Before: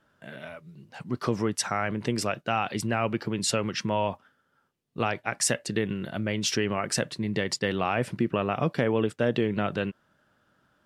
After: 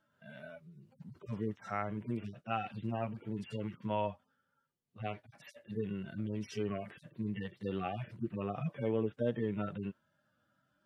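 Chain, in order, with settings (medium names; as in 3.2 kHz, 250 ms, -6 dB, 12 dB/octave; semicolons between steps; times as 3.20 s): harmonic-percussive separation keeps harmonic; trim -7 dB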